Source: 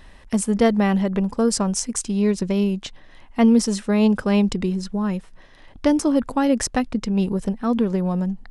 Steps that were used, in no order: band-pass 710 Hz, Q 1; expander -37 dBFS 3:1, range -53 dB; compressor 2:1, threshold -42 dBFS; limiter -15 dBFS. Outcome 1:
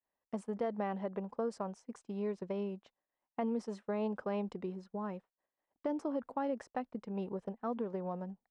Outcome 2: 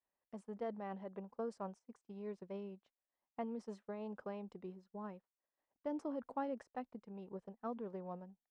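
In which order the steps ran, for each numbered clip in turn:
band-pass > limiter > compressor > expander; limiter > compressor > band-pass > expander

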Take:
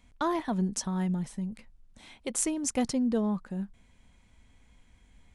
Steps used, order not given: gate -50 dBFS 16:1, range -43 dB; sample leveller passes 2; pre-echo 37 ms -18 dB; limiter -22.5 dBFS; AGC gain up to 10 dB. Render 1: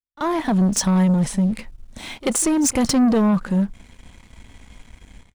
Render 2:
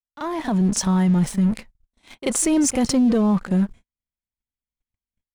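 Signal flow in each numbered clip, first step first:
limiter > AGC > sample leveller > pre-echo > gate; gate > sample leveller > pre-echo > limiter > AGC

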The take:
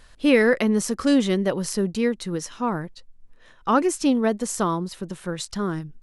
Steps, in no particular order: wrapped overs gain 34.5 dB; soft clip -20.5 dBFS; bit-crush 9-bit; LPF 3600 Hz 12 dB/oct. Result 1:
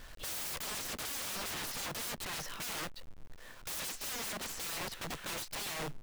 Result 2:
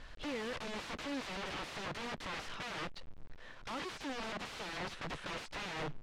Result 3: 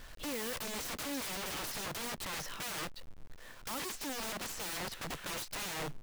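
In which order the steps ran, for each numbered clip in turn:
LPF > bit-crush > wrapped overs > soft clip; soft clip > bit-crush > wrapped overs > LPF; LPF > soft clip > bit-crush > wrapped overs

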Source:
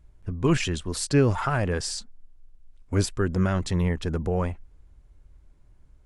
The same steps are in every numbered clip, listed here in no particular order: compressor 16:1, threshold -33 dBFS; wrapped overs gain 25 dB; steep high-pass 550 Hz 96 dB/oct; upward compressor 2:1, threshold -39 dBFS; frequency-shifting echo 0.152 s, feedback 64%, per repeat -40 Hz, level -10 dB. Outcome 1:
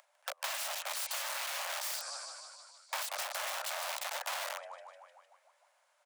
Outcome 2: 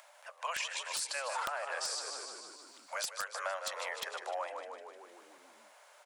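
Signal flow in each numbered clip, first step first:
upward compressor > frequency-shifting echo > wrapped overs > steep high-pass > compressor; steep high-pass > upward compressor > frequency-shifting echo > compressor > wrapped overs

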